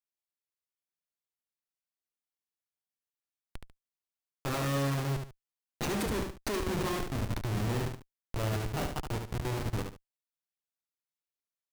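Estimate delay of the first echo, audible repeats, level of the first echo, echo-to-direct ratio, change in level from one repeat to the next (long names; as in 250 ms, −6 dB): 72 ms, 2, −6.0 dB, −5.5 dB, −11.5 dB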